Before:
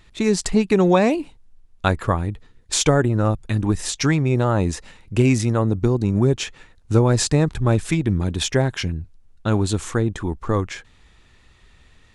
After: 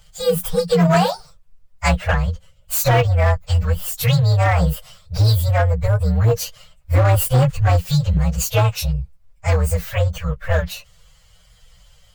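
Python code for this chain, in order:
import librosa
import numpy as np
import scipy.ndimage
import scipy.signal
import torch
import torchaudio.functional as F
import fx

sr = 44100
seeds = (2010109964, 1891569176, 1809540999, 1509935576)

y = fx.partial_stretch(x, sr, pct=126)
y = scipy.signal.sosfilt(scipy.signal.cheby1(5, 1.0, [180.0, 470.0], 'bandstop', fs=sr, output='sos'), y)
y = np.clip(y, -10.0 ** (-16.5 / 20.0), 10.0 ** (-16.5 / 20.0))
y = y * 10.0 ** (7.0 / 20.0)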